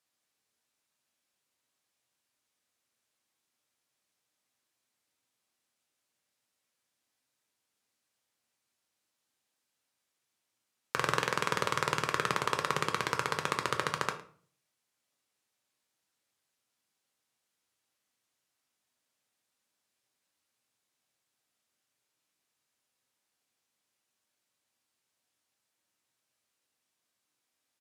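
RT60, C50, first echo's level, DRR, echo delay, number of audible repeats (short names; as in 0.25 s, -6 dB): 0.45 s, 11.5 dB, -19.5 dB, 4.5 dB, 0.11 s, 1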